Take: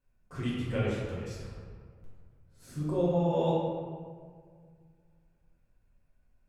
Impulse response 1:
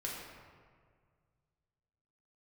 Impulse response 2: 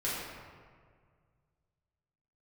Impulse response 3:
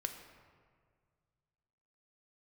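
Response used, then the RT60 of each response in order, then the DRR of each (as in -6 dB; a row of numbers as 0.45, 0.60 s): 2; 1.9, 1.9, 1.9 s; -4.0, -9.0, 5.5 dB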